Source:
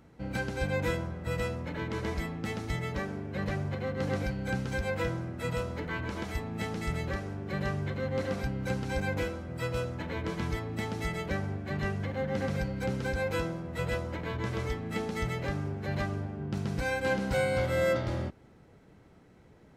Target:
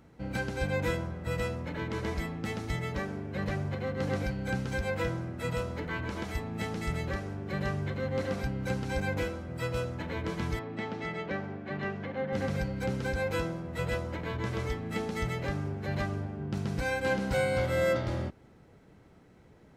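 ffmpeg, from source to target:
-filter_complex "[0:a]asettb=1/sr,asplit=3[a][b][c];[a]atrim=end=10.594[d];[b]atrim=start=10.59:end=12.33,asetpts=PTS-STARTPTS,afade=t=in:d=0.004:c=qsin,afade=t=out:st=1.736:d=0.004:c=qsin,highpass=170,lowpass=3.4k[e];[c]atrim=start=12.326[f];[d][e]acrossfade=d=0.004:c1=hsin:c2=qsin[g];[g][f]acrossfade=d=0.004:c1=qsin:c2=hsin"

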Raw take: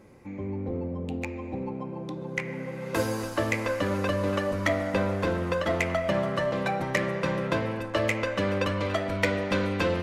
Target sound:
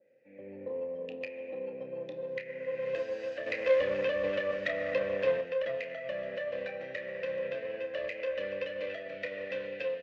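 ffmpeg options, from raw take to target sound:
-filter_complex "[0:a]dynaudnorm=f=130:g=7:m=13dB,alimiter=limit=-13.5dB:level=0:latency=1:release=462,asettb=1/sr,asplit=3[a][b][c];[a]atrim=end=3.464[d];[b]atrim=start=3.46:end=5.41,asetpts=PTS-STARTPTS,afade=t=in:d=0.004:c=qsin,afade=t=out:st=1.946:d=0.004:c=qsin,acontrast=82[e];[c]atrim=start=5.406[f];[d][e]acrossfade=d=0.004:c1=hsin:c2=qsin[g];[g][f]acrossfade=d=0.004:c1=qsin:c2=hsin,asoftclip=type=tanh:threshold=-10.5dB,asplit=3[h][i][j];[h]bandpass=f=530:t=q:w=8,volume=0dB[k];[i]bandpass=f=1.84k:t=q:w=8,volume=-6dB[l];[j]bandpass=f=2.48k:t=q:w=8,volume=-9dB[m];[k][l][m]amix=inputs=3:normalize=0,aeval=exprs='0.237*(cos(1*acos(clip(val(0)/0.237,-1,1)))-cos(1*PI/2))+0.0299*(cos(4*acos(clip(val(0)/0.237,-1,1)))-cos(4*PI/2))':c=same,highpass=120,equalizer=f=130:t=q:w=4:g=3,equalizer=f=370:t=q:w=4:g=-7,equalizer=f=1k:t=q:w=4:g=-8,lowpass=f=6.5k:w=0.5412,lowpass=f=6.5k:w=1.3066,asplit=2[n][o];[o]adelay=30,volume=-9.5dB[p];[n][p]amix=inputs=2:normalize=0,adynamicequalizer=threshold=0.00447:dfrequency=1800:dqfactor=0.7:tfrequency=1800:tqfactor=0.7:attack=5:release=100:ratio=0.375:range=2.5:mode=boostabove:tftype=highshelf,volume=-3.5dB"

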